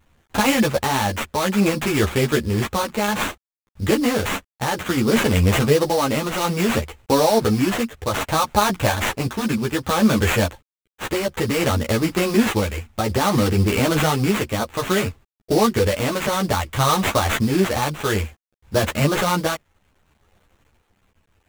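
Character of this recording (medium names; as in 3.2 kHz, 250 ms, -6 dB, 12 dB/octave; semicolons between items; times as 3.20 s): a quantiser's noise floor 10-bit, dither none; tremolo triangle 0.6 Hz, depth 45%; aliases and images of a low sample rate 5 kHz, jitter 20%; a shimmering, thickened sound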